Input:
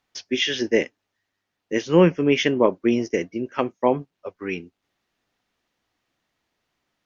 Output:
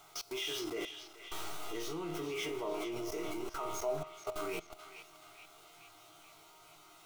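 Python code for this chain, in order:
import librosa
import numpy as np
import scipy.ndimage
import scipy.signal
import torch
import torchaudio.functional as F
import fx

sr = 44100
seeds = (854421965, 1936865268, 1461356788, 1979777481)

p1 = x + 0.5 * 10.0 ** (-25.5 / 20.0) * np.sign(x)
p2 = fx.peak_eq(p1, sr, hz=1300.0, db=9.5, octaves=0.39)
p3 = fx.fixed_phaser(p2, sr, hz=360.0, stages=8)
p4 = fx.resonator_bank(p3, sr, root=39, chord='sus4', decay_s=0.33)
p5 = fx.rev_freeverb(p4, sr, rt60_s=4.5, hf_ratio=0.65, predelay_ms=55, drr_db=14.5)
p6 = fx.level_steps(p5, sr, step_db=21)
p7 = fx.graphic_eq_31(p6, sr, hz=(125, 200, 630, 1000, 2000, 5000), db=(-6, -9, 9, -4, 11, -4))
p8 = p7 + fx.echo_banded(p7, sr, ms=431, feedback_pct=63, hz=2800.0, wet_db=-8, dry=0)
y = F.gain(torch.from_numpy(p8), 3.5).numpy()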